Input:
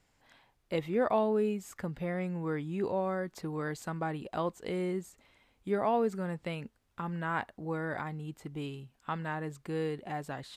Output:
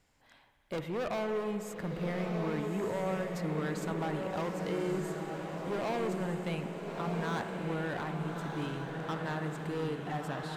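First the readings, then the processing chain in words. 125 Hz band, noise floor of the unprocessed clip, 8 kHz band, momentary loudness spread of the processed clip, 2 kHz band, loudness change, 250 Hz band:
+2.0 dB, −73 dBFS, +2.5 dB, 4 LU, +0.5 dB, −1.0 dB, 0.0 dB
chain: gain into a clipping stage and back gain 32 dB
feedback delay with all-pass diffusion 1,272 ms, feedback 52%, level −4 dB
spring reverb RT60 3.2 s, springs 58 ms, chirp 75 ms, DRR 7.5 dB

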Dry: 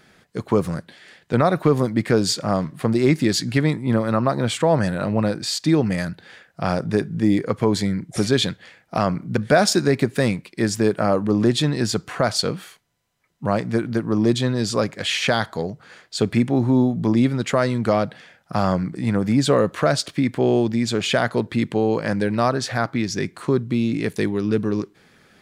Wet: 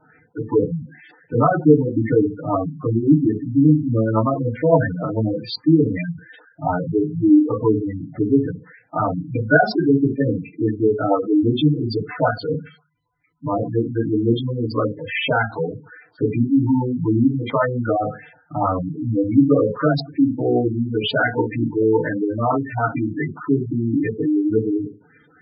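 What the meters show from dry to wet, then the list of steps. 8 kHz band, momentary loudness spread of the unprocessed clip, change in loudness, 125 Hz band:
below −40 dB, 7 LU, +1.0 dB, +1.0 dB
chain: feedback delay network reverb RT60 0.34 s, low-frequency decay 1.05×, high-frequency decay 0.45×, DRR −5 dB
auto-filter low-pass saw up 3.6 Hz 890–4,300 Hz
gate on every frequency bin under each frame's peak −10 dB strong
level −6.5 dB

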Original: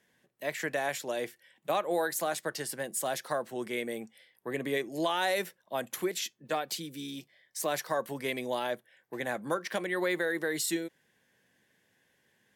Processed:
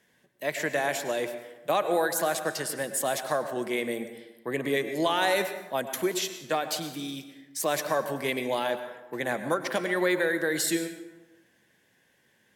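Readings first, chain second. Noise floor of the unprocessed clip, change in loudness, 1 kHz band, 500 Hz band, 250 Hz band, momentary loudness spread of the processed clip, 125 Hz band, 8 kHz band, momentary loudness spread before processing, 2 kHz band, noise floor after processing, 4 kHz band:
−72 dBFS, +4.5 dB, +4.5 dB, +4.5 dB, +4.5 dB, 11 LU, +4.5 dB, +4.5 dB, 11 LU, +4.5 dB, −67 dBFS, +4.5 dB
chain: dense smooth reverb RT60 1.1 s, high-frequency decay 0.55×, pre-delay 90 ms, DRR 9 dB
level +4 dB

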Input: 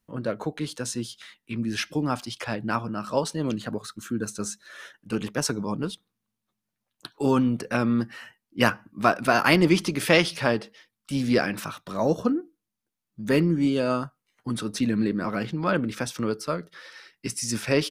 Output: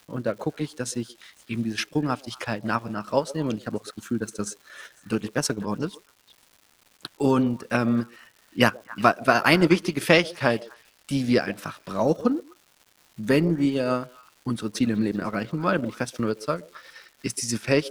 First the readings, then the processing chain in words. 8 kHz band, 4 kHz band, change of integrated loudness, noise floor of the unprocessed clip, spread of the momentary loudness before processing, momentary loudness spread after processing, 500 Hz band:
−0.5 dB, 0.0 dB, +0.5 dB, −84 dBFS, 16 LU, 15 LU, +1.5 dB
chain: echo through a band-pass that steps 125 ms, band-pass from 480 Hz, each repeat 1.4 octaves, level −10 dB
transient designer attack +3 dB, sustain −9 dB
surface crackle 400 per second −43 dBFS

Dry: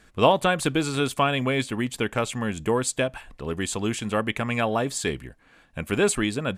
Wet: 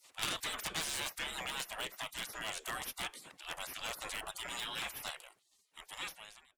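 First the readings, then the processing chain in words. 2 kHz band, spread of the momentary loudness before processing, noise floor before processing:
−12.0 dB, 8 LU, −57 dBFS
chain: fade-out on the ending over 1.73 s
gate on every frequency bin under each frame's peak −25 dB weak
harmonic generator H 3 −8 dB, 7 −19 dB, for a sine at −22 dBFS
level +6.5 dB

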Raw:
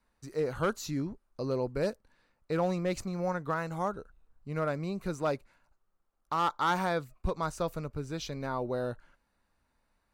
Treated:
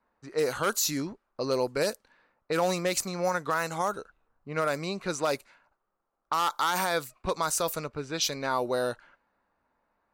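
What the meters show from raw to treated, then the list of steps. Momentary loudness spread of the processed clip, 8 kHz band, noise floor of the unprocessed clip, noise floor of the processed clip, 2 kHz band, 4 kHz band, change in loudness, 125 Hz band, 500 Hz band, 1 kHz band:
9 LU, +15.5 dB, −77 dBFS, −79 dBFS, +6.0 dB, +11.0 dB, +4.0 dB, −3.0 dB, +3.5 dB, +3.5 dB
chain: RIAA equalisation recording
low-pass that shuts in the quiet parts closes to 1,100 Hz, open at −30 dBFS
brickwall limiter −23.5 dBFS, peak gain reduction 9 dB
level +7.5 dB

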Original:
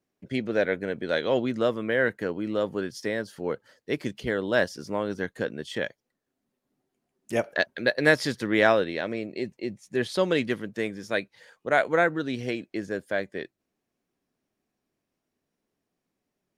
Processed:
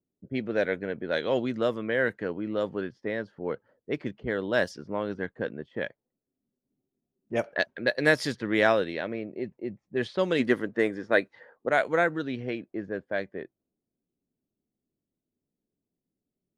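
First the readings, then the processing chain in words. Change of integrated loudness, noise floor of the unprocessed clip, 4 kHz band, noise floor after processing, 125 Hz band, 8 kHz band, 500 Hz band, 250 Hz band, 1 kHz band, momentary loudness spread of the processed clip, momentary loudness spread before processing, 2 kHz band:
−1.5 dB, −83 dBFS, −3.0 dB, below −85 dBFS, −2.0 dB, −5.0 dB, −1.5 dB, −1.5 dB, −2.0 dB, 11 LU, 11 LU, −1.5 dB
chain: gain on a spectral selection 0:10.40–0:11.68, 220–2,100 Hz +7 dB
low-pass that shuts in the quiet parts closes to 380 Hz, open at −20 dBFS
level −2 dB

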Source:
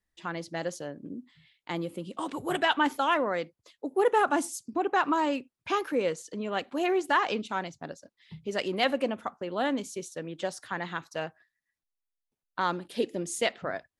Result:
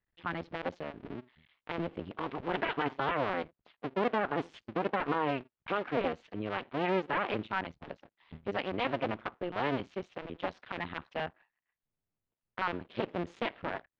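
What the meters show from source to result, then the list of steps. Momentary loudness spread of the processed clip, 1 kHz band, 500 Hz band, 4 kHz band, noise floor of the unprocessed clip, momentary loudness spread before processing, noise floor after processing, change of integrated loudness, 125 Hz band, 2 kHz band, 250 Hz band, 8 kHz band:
12 LU, −5.5 dB, −5.0 dB, −7.5 dB, below −85 dBFS, 15 LU, below −85 dBFS, −5.0 dB, +1.0 dB, −4.5 dB, −4.5 dB, below −25 dB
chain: sub-harmonics by changed cycles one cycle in 2, muted
low-pass filter 3,200 Hz 24 dB per octave
brickwall limiter −19.5 dBFS, peak gain reduction 7.5 dB

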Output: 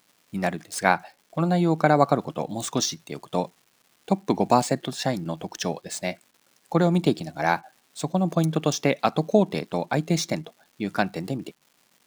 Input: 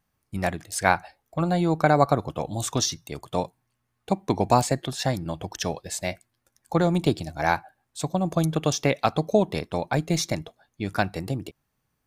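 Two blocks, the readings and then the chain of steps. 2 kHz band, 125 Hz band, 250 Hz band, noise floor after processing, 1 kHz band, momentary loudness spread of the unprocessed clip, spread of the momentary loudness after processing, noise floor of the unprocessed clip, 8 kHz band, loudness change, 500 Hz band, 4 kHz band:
0.0 dB, −0.5 dB, +2.0 dB, −65 dBFS, 0.0 dB, 12 LU, 12 LU, −77 dBFS, −1.0 dB, +0.5 dB, +0.5 dB, −0.5 dB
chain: running median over 3 samples
surface crackle 470 per second −47 dBFS
low shelf with overshoot 120 Hz −13.5 dB, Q 1.5

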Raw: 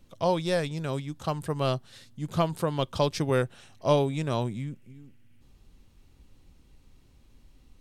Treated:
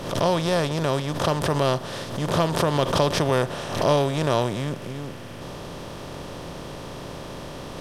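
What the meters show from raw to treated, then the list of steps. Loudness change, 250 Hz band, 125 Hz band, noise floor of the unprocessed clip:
+5.5 dB, +5.0 dB, +5.0 dB, −58 dBFS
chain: compressor on every frequency bin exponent 0.4
background raised ahead of every attack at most 70 dB per second

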